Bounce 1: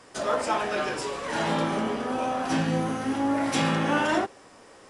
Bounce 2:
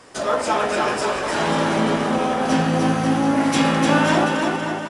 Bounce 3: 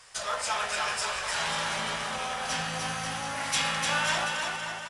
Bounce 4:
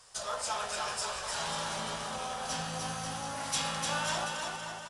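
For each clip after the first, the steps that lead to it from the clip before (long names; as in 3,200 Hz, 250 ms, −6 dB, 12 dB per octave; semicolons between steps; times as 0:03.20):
bouncing-ball delay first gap 300 ms, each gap 0.8×, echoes 5; level +5 dB
guitar amp tone stack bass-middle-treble 10-0-10
parametric band 2,100 Hz −9.5 dB 1.1 octaves; level −2 dB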